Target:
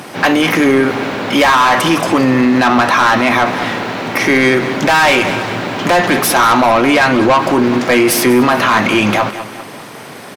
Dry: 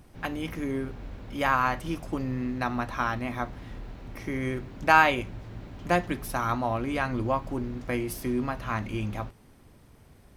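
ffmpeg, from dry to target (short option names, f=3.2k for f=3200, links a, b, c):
-filter_complex "[0:a]highpass=f=120:w=0.5412,highpass=f=120:w=1.3066,asplit=2[a][b];[b]highpass=f=720:p=1,volume=30dB,asoftclip=type=tanh:threshold=-4.5dB[c];[a][c]amix=inputs=2:normalize=0,lowpass=f=4.9k:p=1,volume=-6dB,asplit=2[d][e];[e]aecho=0:1:198|396|594|792:0.158|0.0745|0.035|0.0165[f];[d][f]amix=inputs=2:normalize=0,alimiter=level_in=12.5dB:limit=-1dB:release=50:level=0:latency=1,volume=-3.5dB"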